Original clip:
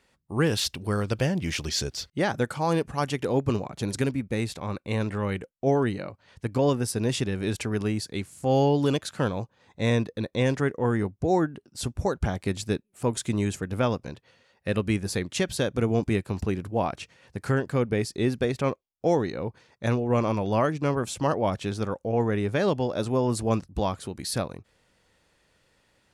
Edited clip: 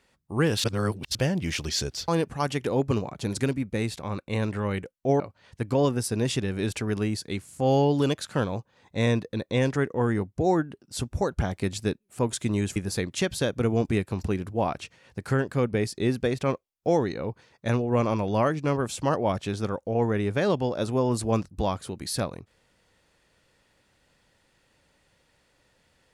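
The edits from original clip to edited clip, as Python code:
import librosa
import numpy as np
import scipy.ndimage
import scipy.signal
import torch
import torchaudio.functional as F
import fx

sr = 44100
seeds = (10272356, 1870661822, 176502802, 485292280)

y = fx.edit(x, sr, fx.reverse_span(start_s=0.64, length_s=0.51),
    fx.cut(start_s=2.08, length_s=0.58),
    fx.cut(start_s=5.78, length_s=0.26),
    fx.cut(start_s=13.6, length_s=1.34), tone=tone)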